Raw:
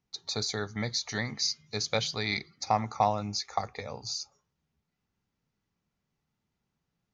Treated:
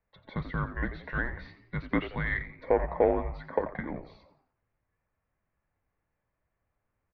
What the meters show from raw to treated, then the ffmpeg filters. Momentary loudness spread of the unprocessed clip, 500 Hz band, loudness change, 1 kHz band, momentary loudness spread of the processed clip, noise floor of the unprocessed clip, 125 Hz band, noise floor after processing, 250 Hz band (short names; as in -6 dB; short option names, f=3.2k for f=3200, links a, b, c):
7 LU, +5.5 dB, -0.5 dB, -5.0 dB, 13 LU, -84 dBFS, +1.0 dB, -83 dBFS, +3.5 dB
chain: -filter_complex "[0:a]lowshelf=f=110:t=q:w=3:g=-11,asplit=2[a][b];[b]asoftclip=type=tanh:threshold=-29dB,volume=-3dB[c];[a][c]amix=inputs=2:normalize=0,asplit=5[d][e][f][g][h];[e]adelay=87,afreqshift=110,volume=-13dB[i];[f]adelay=174,afreqshift=220,volume=-21.6dB[j];[g]adelay=261,afreqshift=330,volume=-30.3dB[k];[h]adelay=348,afreqshift=440,volume=-38.9dB[l];[d][i][j][k][l]amix=inputs=5:normalize=0,highpass=f=240:t=q:w=0.5412,highpass=f=240:t=q:w=1.307,lowpass=f=2.5k:t=q:w=0.5176,lowpass=f=2.5k:t=q:w=0.7071,lowpass=f=2.5k:t=q:w=1.932,afreqshift=-270"